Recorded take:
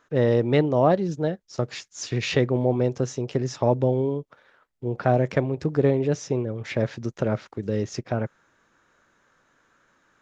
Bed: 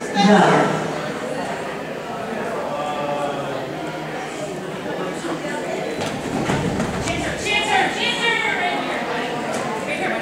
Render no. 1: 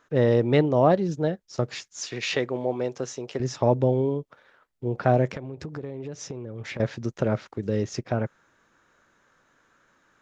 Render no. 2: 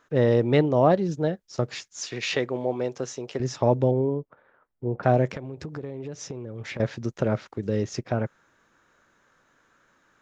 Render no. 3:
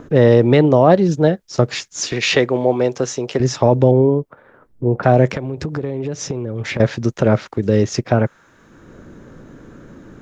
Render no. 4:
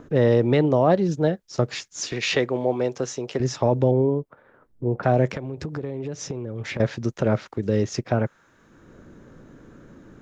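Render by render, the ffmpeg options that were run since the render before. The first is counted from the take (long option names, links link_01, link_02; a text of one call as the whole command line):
ffmpeg -i in.wav -filter_complex "[0:a]asettb=1/sr,asplit=3[link_01][link_02][link_03];[link_01]atrim=end=2.004[link_04];[link_02]atrim=start=2:end=3.4,asetpts=PTS-STARTPTS,afade=type=in:duration=0.004:curve=qsin,afade=type=out:start_time=1.396:duration=0.004:curve=qsin,highpass=frequency=540:poles=1[link_05];[link_03]atrim=start=3.396[link_06];[link_04][link_05]acrossfade=duration=0.004:curve1=hsin:curve2=qsin[link_07];[link_07][link_06]acrossfade=duration=0.004:curve1=qsin:curve2=hsin,asettb=1/sr,asplit=3[link_08][link_09][link_10];[link_08]atrim=end=5.264[link_11];[link_09]atrim=start=5.26:end=6.8,asetpts=PTS-STARTPTS,afade=type=in:duration=0.004:curve=qsin,afade=type=out:start_time=1.536:duration=0.004:curve=qsin,acompressor=threshold=-31dB:ratio=8:attack=3.2:release=140:knee=1:detection=peak[link_12];[link_10]atrim=start=6.796[link_13];[link_11][link_12]acrossfade=duration=0.004:curve1=hsin:curve2=qsin[link_14];[link_14][link_13]acrossfade=duration=0.004:curve1=qsin:curve2=hsin" out.wav
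ffmpeg -i in.wav -filter_complex "[0:a]asettb=1/sr,asplit=3[link_01][link_02][link_03];[link_01]atrim=end=3.914[link_04];[link_02]atrim=start=3.91:end=5.03,asetpts=PTS-STARTPTS,afade=type=in:duration=0.004:curve=qsin,afade=type=out:start_time=1.116:duration=0.004:curve=qsin,lowpass=1400[link_05];[link_03]atrim=start=5.026[link_06];[link_04][link_05]acrossfade=duration=0.004:curve1=hsin:curve2=qsin[link_07];[link_07][link_06]acrossfade=duration=0.004:curve1=qsin:curve2=hsin" out.wav
ffmpeg -i in.wav -filter_complex "[0:a]acrossover=split=420[link_01][link_02];[link_01]acompressor=mode=upward:threshold=-32dB:ratio=2.5[link_03];[link_03][link_02]amix=inputs=2:normalize=0,alimiter=level_in=11dB:limit=-1dB:release=50:level=0:latency=1" out.wav
ffmpeg -i in.wav -af "volume=-7dB" out.wav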